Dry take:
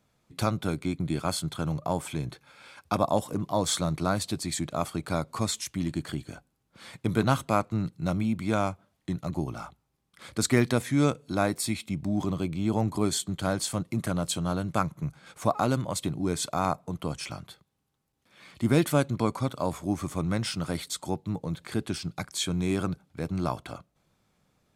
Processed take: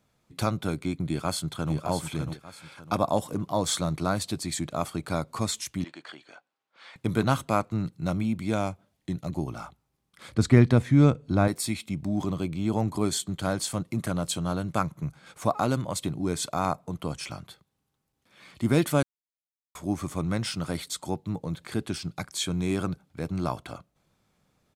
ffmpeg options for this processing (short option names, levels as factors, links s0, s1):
-filter_complex "[0:a]asplit=2[s0][s1];[s1]afade=t=in:st=1.07:d=0.01,afade=t=out:st=1.73:d=0.01,aecho=0:1:600|1200|1800|2400:0.446684|0.134005|0.0402015|0.0120605[s2];[s0][s2]amix=inputs=2:normalize=0,asettb=1/sr,asplit=3[s3][s4][s5];[s3]atrim=end=5.844[s6];[s4]atrim=start=5.84:end=6.96,asetpts=PTS-STARTPTS,afade=t=in:d=0.004:c=qsin,afade=t=out:st=1.116:d=0.004:c=qsin,highpass=670,lowpass=3900[s7];[s5]atrim=start=6.956[s8];[s6][s7]acrossfade=d=0.004:c1=hsin:c2=qsin[s9];[s9][s8]acrossfade=d=0.004:c1=qsin:c2=hsin,asettb=1/sr,asplit=3[s10][s11][s12];[s10]atrim=end=8.394[s13];[s11]atrim=start=8.39:end=9.38,asetpts=PTS-STARTPTS,afade=t=in:d=0.004:c=qsin,afade=t=out:st=0.986:d=0.004:c=qsin,equalizer=f=1200:w=1.5:g=-5[s14];[s12]atrim=start=9.376[s15];[s13][s14]acrossfade=d=0.004:c1=hsin:c2=qsin[s16];[s16][s15]acrossfade=d=0.004:c1=qsin:c2=hsin,asettb=1/sr,asplit=3[s17][s18][s19];[s17]atrim=end=10.344[s20];[s18]atrim=start=10.34:end=11.48,asetpts=PTS-STARTPTS,afade=t=in:d=0.004:c=qsin,afade=t=out:st=1.136:d=0.004:c=qsin,aemphasis=mode=reproduction:type=bsi[s21];[s19]atrim=start=11.476[s22];[s20][s21]acrossfade=d=0.004:c1=hsin:c2=qsin[s23];[s23][s22]acrossfade=d=0.004:c1=qsin:c2=hsin,asplit=3[s24][s25][s26];[s24]atrim=end=19.03,asetpts=PTS-STARTPTS,afade=t=out:st=19.026:d=0.004:c=hsin[s27];[s25]atrim=start=19.03:end=19.75,asetpts=PTS-STARTPTS,volume=0[s28];[s26]atrim=start=19.75,asetpts=PTS-STARTPTS,afade=t=in:d=0.004:c=hsin[s29];[s27][s28][s29]concat=n=3:v=0:a=1"